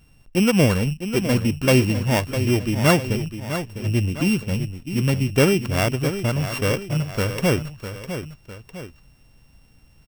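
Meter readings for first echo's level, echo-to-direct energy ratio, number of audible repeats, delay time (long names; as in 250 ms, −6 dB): −10.0 dB, −9.0 dB, 2, 654 ms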